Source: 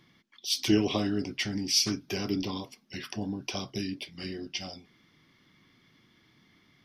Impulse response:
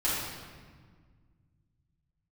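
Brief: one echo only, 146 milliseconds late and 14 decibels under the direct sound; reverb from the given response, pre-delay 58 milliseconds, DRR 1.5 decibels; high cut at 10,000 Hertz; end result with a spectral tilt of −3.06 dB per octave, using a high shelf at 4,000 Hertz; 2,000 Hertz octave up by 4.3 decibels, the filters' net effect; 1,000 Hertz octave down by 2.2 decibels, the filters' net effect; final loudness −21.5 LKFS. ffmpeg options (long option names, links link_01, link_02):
-filter_complex "[0:a]lowpass=10000,equalizer=frequency=1000:width_type=o:gain=-4.5,equalizer=frequency=2000:width_type=o:gain=4.5,highshelf=frequency=4000:gain=6,aecho=1:1:146:0.2,asplit=2[link_01][link_02];[1:a]atrim=start_sample=2205,adelay=58[link_03];[link_02][link_03]afir=irnorm=-1:irlink=0,volume=-11.5dB[link_04];[link_01][link_04]amix=inputs=2:normalize=0,volume=4.5dB"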